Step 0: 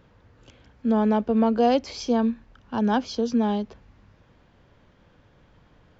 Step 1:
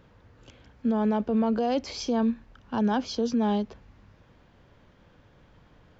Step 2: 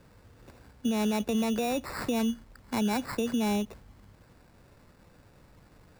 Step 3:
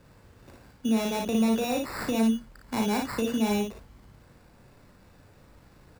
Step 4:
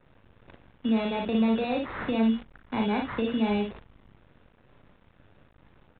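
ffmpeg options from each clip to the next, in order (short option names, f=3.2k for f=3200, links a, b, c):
-af "alimiter=limit=-18dB:level=0:latency=1:release=16"
-filter_complex "[0:a]acrossover=split=140[a][b];[b]acompressor=threshold=-26dB:ratio=6[c];[a][c]amix=inputs=2:normalize=0,acrusher=samples=14:mix=1:aa=0.000001"
-af "aecho=1:1:36|58:0.473|0.631"
-af "acrusher=bits=8:dc=4:mix=0:aa=0.000001,aresample=8000,aresample=44100"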